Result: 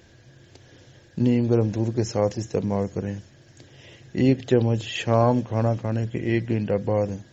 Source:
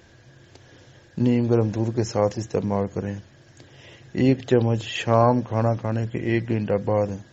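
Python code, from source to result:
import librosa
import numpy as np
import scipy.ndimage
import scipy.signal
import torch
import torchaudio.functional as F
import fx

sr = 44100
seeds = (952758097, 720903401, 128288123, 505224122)

p1 = fx.peak_eq(x, sr, hz=1100.0, db=-4.5, octaves=1.4)
y = p1 + fx.echo_wet_highpass(p1, sr, ms=391, feedback_pct=58, hz=4600.0, wet_db=-18, dry=0)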